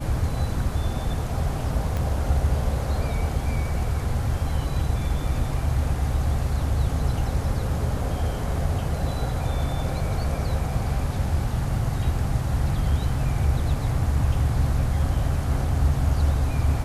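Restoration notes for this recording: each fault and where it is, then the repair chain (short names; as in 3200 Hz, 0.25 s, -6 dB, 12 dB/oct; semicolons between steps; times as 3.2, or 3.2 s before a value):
1.97 pop -16 dBFS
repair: de-click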